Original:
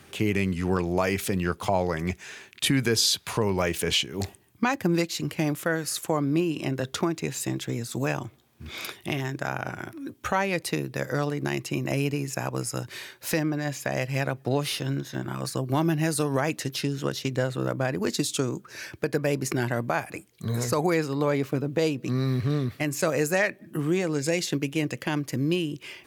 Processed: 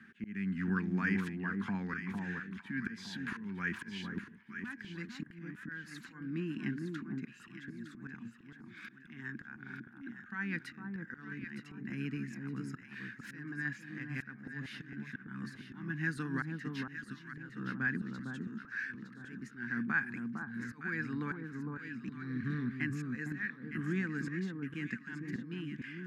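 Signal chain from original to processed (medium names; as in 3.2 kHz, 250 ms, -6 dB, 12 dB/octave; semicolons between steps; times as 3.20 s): two resonant band-passes 600 Hz, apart 2.9 oct; slow attack 372 ms; echo whose repeats swap between lows and highs 456 ms, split 1.2 kHz, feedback 54%, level -3 dB; trim +5 dB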